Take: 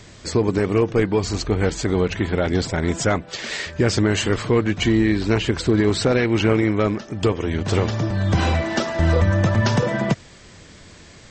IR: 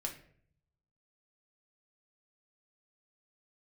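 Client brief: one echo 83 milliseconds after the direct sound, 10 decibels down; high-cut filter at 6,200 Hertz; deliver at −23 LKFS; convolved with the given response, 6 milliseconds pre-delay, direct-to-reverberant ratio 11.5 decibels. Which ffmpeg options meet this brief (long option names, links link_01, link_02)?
-filter_complex "[0:a]lowpass=6200,aecho=1:1:83:0.316,asplit=2[link_01][link_02];[1:a]atrim=start_sample=2205,adelay=6[link_03];[link_02][link_03]afir=irnorm=-1:irlink=0,volume=-11.5dB[link_04];[link_01][link_04]amix=inputs=2:normalize=0,volume=-3dB"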